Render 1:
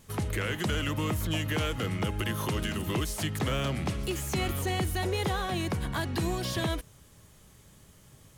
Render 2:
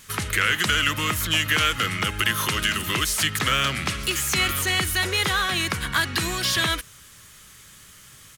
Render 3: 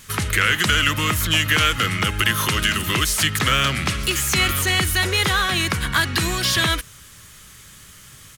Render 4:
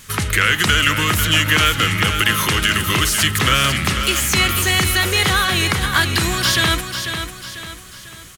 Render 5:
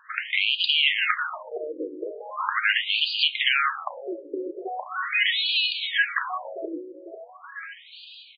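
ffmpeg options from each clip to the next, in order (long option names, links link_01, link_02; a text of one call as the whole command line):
ffmpeg -i in.wav -af "firequalizer=gain_entry='entry(780,0);entry(1300,14);entry(12000,12)':delay=0.05:min_phase=1" out.wav
ffmpeg -i in.wav -af "lowshelf=frequency=180:gain=4.5,volume=3dB" out.wav
ffmpeg -i in.wav -af "aecho=1:1:495|990|1485|1980|2475:0.398|0.163|0.0669|0.0274|0.0112,volume=2.5dB" out.wav
ffmpeg -i in.wav -af "afftfilt=real='re*between(b*sr/1024,400*pow(3500/400,0.5+0.5*sin(2*PI*0.4*pts/sr))/1.41,400*pow(3500/400,0.5+0.5*sin(2*PI*0.4*pts/sr))*1.41)':imag='im*between(b*sr/1024,400*pow(3500/400,0.5+0.5*sin(2*PI*0.4*pts/sr))/1.41,400*pow(3500/400,0.5+0.5*sin(2*PI*0.4*pts/sr))*1.41)':win_size=1024:overlap=0.75,volume=-1.5dB" out.wav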